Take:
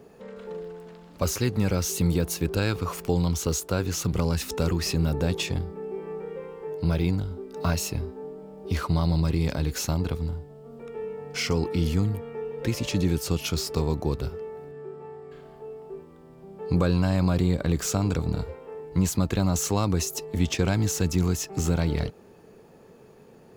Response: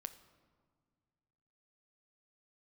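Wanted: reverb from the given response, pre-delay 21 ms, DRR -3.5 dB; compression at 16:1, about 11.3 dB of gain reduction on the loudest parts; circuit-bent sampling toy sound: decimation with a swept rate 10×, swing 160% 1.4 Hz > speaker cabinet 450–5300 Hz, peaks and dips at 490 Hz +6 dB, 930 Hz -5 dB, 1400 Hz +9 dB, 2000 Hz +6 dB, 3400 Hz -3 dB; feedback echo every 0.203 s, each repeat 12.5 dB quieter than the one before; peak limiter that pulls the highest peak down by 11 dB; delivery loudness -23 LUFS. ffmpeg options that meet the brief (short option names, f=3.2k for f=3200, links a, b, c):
-filter_complex "[0:a]acompressor=threshold=-29dB:ratio=16,alimiter=level_in=2.5dB:limit=-24dB:level=0:latency=1,volume=-2.5dB,aecho=1:1:203|406|609:0.237|0.0569|0.0137,asplit=2[a][b];[1:a]atrim=start_sample=2205,adelay=21[c];[b][c]afir=irnorm=-1:irlink=0,volume=7.5dB[d];[a][d]amix=inputs=2:normalize=0,acrusher=samples=10:mix=1:aa=0.000001:lfo=1:lforange=16:lforate=1.4,highpass=450,equalizer=f=490:t=q:w=4:g=6,equalizer=f=930:t=q:w=4:g=-5,equalizer=f=1.4k:t=q:w=4:g=9,equalizer=f=2k:t=q:w=4:g=6,equalizer=f=3.4k:t=q:w=4:g=-3,lowpass=f=5.3k:w=0.5412,lowpass=f=5.3k:w=1.3066,volume=11dB"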